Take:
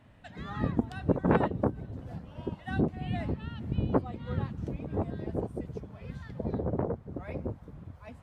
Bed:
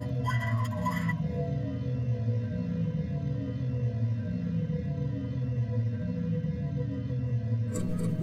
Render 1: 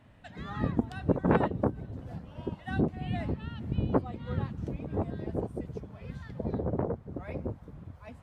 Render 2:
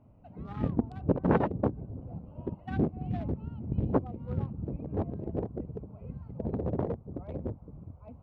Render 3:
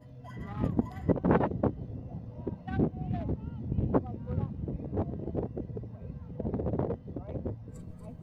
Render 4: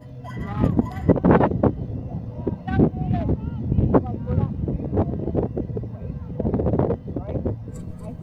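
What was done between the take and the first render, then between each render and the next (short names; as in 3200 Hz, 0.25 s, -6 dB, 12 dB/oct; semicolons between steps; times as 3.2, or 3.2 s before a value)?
nothing audible
Wiener smoothing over 25 samples; LPF 2100 Hz 6 dB/oct
add bed -18 dB
gain +10.5 dB; limiter -3 dBFS, peak gain reduction 2.5 dB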